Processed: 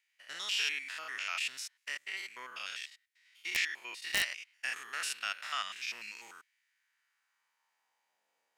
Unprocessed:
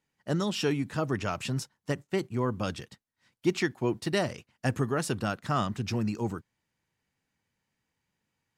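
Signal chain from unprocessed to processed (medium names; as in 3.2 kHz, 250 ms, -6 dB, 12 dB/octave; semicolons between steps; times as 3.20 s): spectrogram pixelated in time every 100 ms; high-pass sweep 2.2 kHz -> 580 Hz, 6.41–8.41 s; integer overflow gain 21 dB; trim +2.5 dB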